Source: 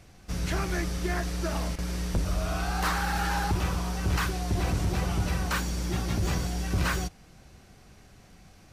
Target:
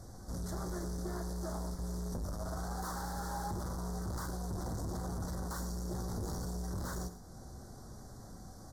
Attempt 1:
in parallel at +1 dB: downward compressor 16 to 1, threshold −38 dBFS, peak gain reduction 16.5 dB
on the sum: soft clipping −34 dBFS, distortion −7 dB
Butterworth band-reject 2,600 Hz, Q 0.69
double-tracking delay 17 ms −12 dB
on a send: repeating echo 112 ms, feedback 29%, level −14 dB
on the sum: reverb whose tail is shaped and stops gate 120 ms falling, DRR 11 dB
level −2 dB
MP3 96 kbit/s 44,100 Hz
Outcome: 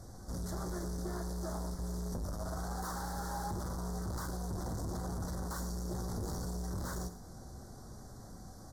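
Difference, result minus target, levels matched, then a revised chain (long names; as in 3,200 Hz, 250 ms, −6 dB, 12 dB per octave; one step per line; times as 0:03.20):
downward compressor: peak gain reduction −7.5 dB
in parallel at +1 dB: downward compressor 16 to 1, threshold −46 dBFS, peak gain reduction 24 dB
on the sum: soft clipping −34 dBFS, distortion −7 dB
Butterworth band-reject 2,600 Hz, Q 0.69
double-tracking delay 17 ms −12 dB
on a send: repeating echo 112 ms, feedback 29%, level −14 dB
on the sum: reverb whose tail is shaped and stops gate 120 ms falling, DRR 11 dB
level −2 dB
MP3 96 kbit/s 44,100 Hz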